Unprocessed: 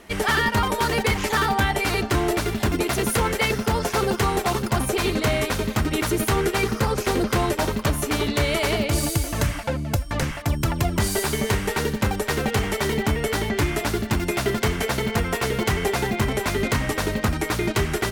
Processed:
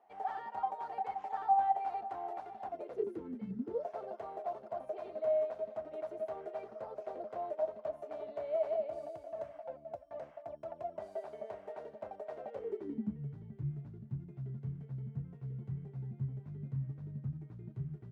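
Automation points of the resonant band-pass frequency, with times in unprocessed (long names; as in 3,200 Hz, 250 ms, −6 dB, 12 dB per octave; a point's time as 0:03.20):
resonant band-pass, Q 19
0:02.67 770 Hz
0:03.53 180 Hz
0:03.83 640 Hz
0:12.49 640 Hz
0:13.27 140 Hz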